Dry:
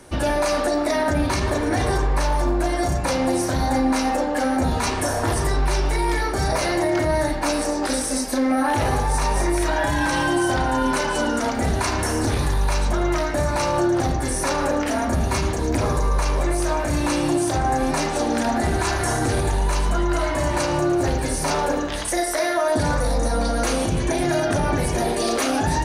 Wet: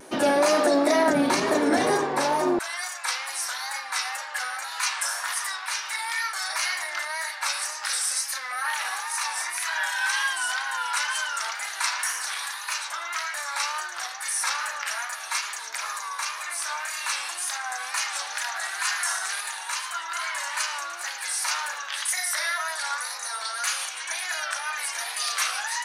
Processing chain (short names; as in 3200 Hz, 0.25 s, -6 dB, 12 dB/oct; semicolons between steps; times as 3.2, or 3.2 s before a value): HPF 200 Hz 24 dB/oct, from 2.59 s 1200 Hz; wow and flutter 73 cents; gain +1 dB